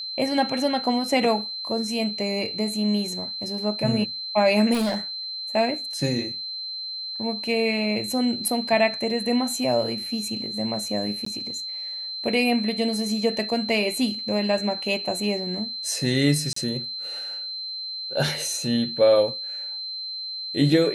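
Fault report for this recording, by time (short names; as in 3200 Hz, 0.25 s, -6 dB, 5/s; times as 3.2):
tone 4100 Hz -30 dBFS
4.73–4.98 clipped -20.5 dBFS
11.25–11.26 gap 14 ms
16.53–16.56 gap 34 ms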